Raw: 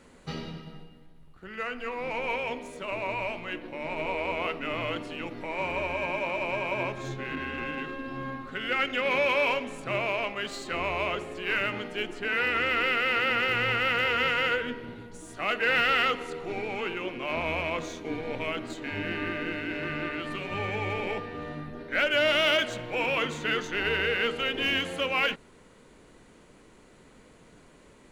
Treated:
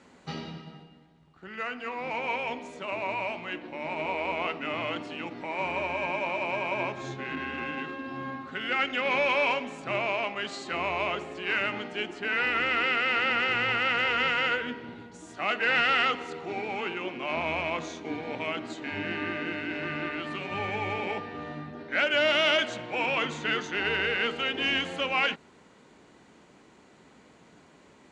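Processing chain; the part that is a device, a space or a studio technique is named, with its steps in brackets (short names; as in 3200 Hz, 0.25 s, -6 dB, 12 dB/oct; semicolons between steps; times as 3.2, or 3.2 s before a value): car door speaker (speaker cabinet 97–7600 Hz, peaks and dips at 120 Hz -4 dB, 490 Hz -4 dB, 800 Hz +4 dB)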